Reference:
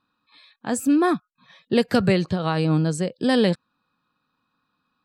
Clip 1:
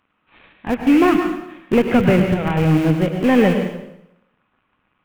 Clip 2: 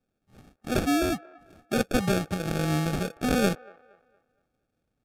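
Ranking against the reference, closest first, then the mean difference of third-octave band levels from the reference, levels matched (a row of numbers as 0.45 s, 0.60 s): 1, 2; 8.0 dB, 11.5 dB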